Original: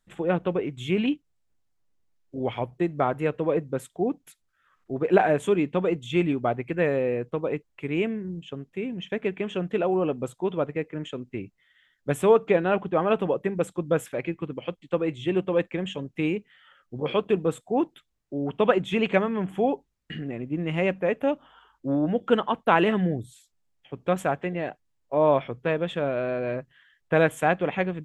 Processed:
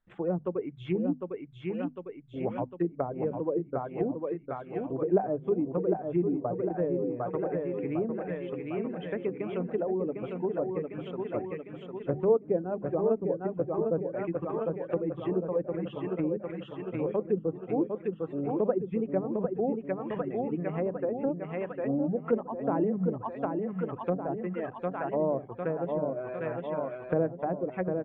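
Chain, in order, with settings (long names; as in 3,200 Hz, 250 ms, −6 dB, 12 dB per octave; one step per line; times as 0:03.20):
reverb reduction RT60 1.7 s
mains-hum notches 50/100/150/200/250 Hz
on a send: repeating echo 753 ms, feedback 60%, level −5 dB
on the sum: treble cut that deepens with the level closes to 550 Hz, closed at −21 dBFS
low-pass filter 2,100 Hz 12 dB per octave
level −3.5 dB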